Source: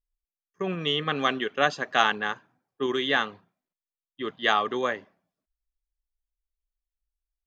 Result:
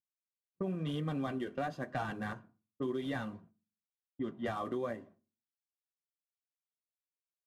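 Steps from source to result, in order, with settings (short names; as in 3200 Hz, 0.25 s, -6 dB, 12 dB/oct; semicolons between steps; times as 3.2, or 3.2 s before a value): CVSD 64 kbps; flange 0.97 Hz, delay 5.8 ms, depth 6.6 ms, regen -44%; low-pass opened by the level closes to 720 Hz, open at -29 dBFS; notch comb 430 Hz; gate with hold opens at -54 dBFS; tilt shelf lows +9.5 dB, about 890 Hz; reverb RT60 0.35 s, pre-delay 4 ms, DRR 17 dB; compressor 4:1, threshold -34 dBFS, peak gain reduction 9.5 dB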